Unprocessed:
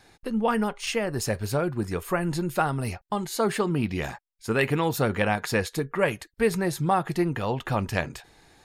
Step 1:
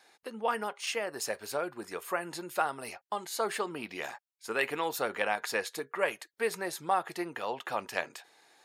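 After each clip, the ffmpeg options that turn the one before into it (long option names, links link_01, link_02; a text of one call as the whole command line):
ffmpeg -i in.wav -af "highpass=490,volume=-4dB" out.wav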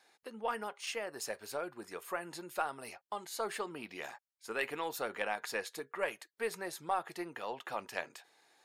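ffmpeg -i in.wav -af "aeval=exprs='0.282*(cos(1*acos(clip(val(0)/0.282,-1,1)))-cos(1*PI/2))+0.00794*(cos(4*acos(clip(val(0)/0.282,-1,1)))-cos(4*PI/2))':channel_layout=same,volume=-5.5dB" out.wav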